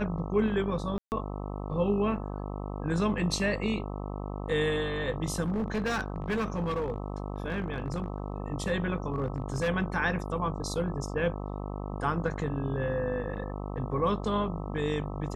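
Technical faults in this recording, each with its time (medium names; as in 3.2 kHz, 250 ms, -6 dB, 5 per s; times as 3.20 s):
buzz 50 Hz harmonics 26 -36 dBFS
0.98–1.12 s: dropout 139 ms
5.41–8.32 s: clipped -26 dBFS
9.12–9.69 s: clipped -24.5 dBFS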